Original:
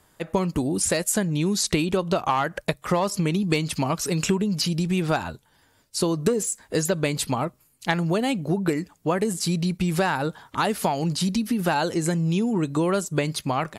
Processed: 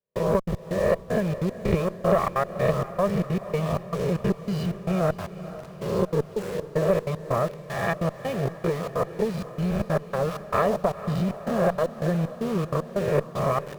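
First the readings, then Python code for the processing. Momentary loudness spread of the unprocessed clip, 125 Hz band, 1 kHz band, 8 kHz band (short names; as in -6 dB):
4 LU, -1.0 dB, -2.0 dB, -17.5 dB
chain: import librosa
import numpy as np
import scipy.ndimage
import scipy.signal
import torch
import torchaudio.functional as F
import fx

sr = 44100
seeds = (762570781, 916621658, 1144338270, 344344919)

p1 = fx.spec_swells(x, sr, rise_s=1.16)
p2 = scipy.signal.sosfilt(scipy.signal.butter(2, 1200.0, 'lowpass', fs=sr, output='sos'), p1)
p3 = fx.notch(p2, sr, hz=750.0, q=12.0)
p4 = p3 + 0.99 * np.pad(p3, (int(1.7 * sr / 1000.0), 0))[:len(p3)]
p5 = np.where(np.abs(p4) >= 10.0 ** (-31.5 / 20.0), p4, 0.0)
p6 = fx.step_gate(p5, sr, bpm=191, pattern='..xxx.x..xxx', floor_db=-60.0, edge_ms=4.5)
p7 = fx.tube_stage(p6, sr, drive_db=10.0, bias=0.6)
y = p7 + fx.echo_diffused(p7, sr, ms=479, feedback_pct=56, wet_db=-13.5, dry=0)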